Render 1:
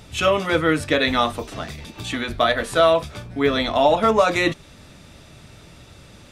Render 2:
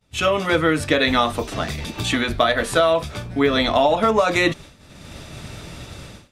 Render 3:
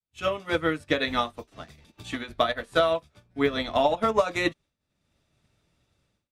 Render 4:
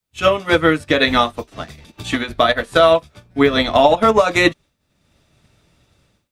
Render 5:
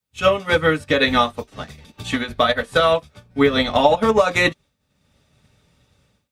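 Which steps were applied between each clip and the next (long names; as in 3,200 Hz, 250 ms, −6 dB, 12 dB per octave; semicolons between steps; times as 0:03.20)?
automatic gain control gain up to 10.5 dB; downward expander −32 dBFS; downward compressor, threshold −13 dBFS, peak gain reduction 6.5 dB
expander for the loud parts 2.5 to 1, over −34 dBFS; level −2.5 dB
boost into a limiter +13.5 dB; level −1 dB
notch comb filter 340 Hz; level −1 dB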